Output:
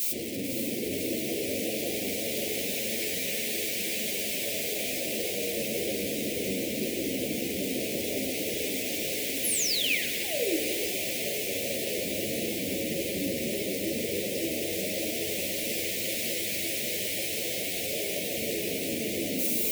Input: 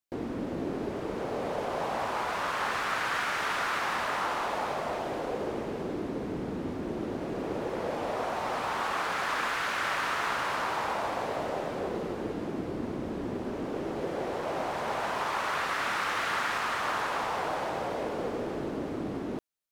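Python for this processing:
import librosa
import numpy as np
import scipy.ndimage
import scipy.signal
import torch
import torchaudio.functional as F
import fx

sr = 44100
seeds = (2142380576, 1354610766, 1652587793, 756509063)

p1 = np.sign(x) * np.sqrt(np.mean(np.square(x)))
p2 = fx.high_shelf(p1, sr, hz=9900.0, db=12.0)
p3 = p2 + fx.echo_diffused(p2, sr, ms=558, feedback_pct=77, wet_db=-4.5, dry=0)
p4 = fx.spec_paint(p3, sr, seeds[0], shape='fall', start_s=9.43, length_s=1.15, low_hz=280.0, high_hz=12000.0, level_db=-26.0)
p5 = scipy.signal.sosfilt(scipy.signal.butter(2, 72.0, 'highpass', fs=sr, output='sos'), p4)
p6 = fx.rev_spring(p5, sr, rt60_s=3.1, pass_ms=(42,), chirp_ms=60, drr_db=2.5)
p7 = 10.0 ** (-23.0 / 20.0) * (np.abs((p6 / 10.0 ** (-23.0 / 20.0) + 3.0) % 4.0 - 2.0) - 1.0)
p8 = p6 + F.gain(torch.from_numpy(p7), -11.0).numpy()
p9 = scipy.signal.sosfilt(scipy.signal.cheby1(3, 1.0, [590.0, 2200.0], 'bandstop', fs=sr, output='sos'), p8)
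p10 = fx.low_shelf(p9, sr, hz=99.0, db=-8.0)
y = fx.ensemble(p10, sr)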